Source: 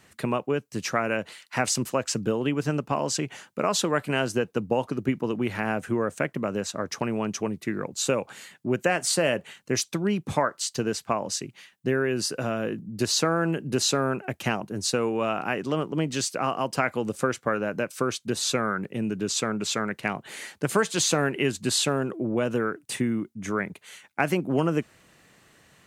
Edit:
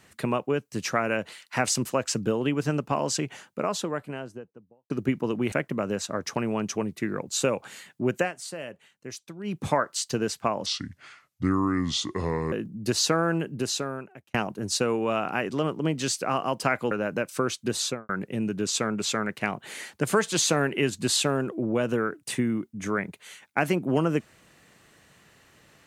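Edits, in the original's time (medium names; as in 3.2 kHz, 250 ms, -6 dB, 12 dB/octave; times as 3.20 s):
3.09–4.90 s: studio fade out
5.52–6.17 s: delete
8.84–10.21 s: dip -13.5 dB, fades 0.13 s
11.31–12.65 s: speed 72%
13.39–14.47 s: fade out
17.04–17.53 s: delete
18.42–18.71 s: studio fade out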